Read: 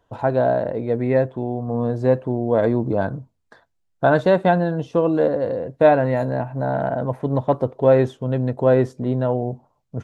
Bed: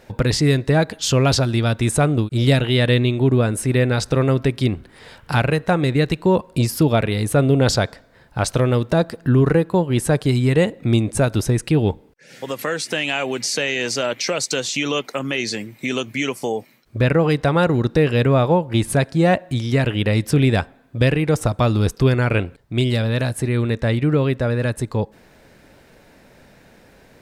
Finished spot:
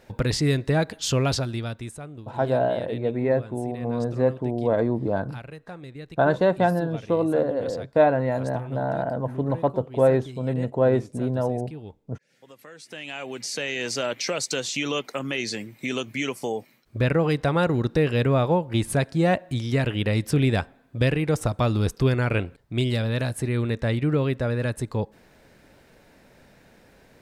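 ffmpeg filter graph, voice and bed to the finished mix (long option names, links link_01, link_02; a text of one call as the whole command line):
ffmpeg -i stem1.wav -i stem2.wav -filter_complex "[0:a]adelay=2150,volume=-4dB[link_01];[1:a]volume=11.5dB,afade=type=out:start_time=1.13:duration=0.86:silence=0.149624,afade=type=in:start_time=12.74:duration=1.25:silence=0.141254[link_02];[link_01][link_02]amix=inputs=2:normalize=0" out.wav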